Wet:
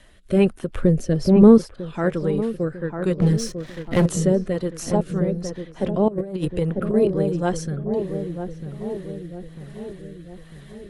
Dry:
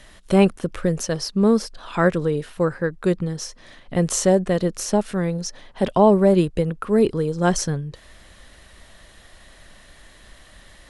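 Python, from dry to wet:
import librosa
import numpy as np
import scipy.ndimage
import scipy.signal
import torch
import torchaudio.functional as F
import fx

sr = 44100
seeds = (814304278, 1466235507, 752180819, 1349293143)

y = fx.spec_quant(x, sr, step_db=15)
y = fx.peak_eq(y, sr, hz=5700.0, db=-4.5, octaves=1.0)
y = fx.leveller(y, sr, passes=3, at=(3.19, 4.06))
y = fx.echo_filtered(y, sr, ms=948, feedback_pct=58, hz=810.0, wet_db=-6.0)
y = fx.rotary(y, sr, hz=1.2)
y = fx.low_shelf(y, sr, hz=440.0, db=11.5, at=(0.75, 1.58))
y = fx.over_compress(y, sr, threshold_db=-22.0, ratio=-0.5, at=(6.08, 6.94))
y = y * librosa.db_to_amplitude(-1.0)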